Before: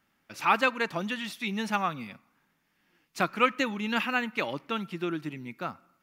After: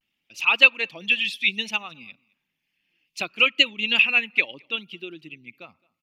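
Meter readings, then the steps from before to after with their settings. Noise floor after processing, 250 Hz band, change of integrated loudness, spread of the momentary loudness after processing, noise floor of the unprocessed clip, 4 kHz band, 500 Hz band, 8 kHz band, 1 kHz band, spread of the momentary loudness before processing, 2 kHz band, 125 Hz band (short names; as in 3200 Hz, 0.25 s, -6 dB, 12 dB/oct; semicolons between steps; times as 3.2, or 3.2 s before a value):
-80 dBFS, -6.5 dB, +9.5 dB, 17 LU, -73 dBFS, +14.0 dB, -2.0 dB, +2.5 dB, -6.0 dB, 13 LU, +10.5 dB, n/a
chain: formant sharpening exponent 1.5; resonant high shelf 2000 Hz +10.5 dB, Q 3; vibrato 0.64 Hz 59 cents; echo 0.215 s -24 dB; upward expander 1.5:1, over -37 dBFS; gain +2 dB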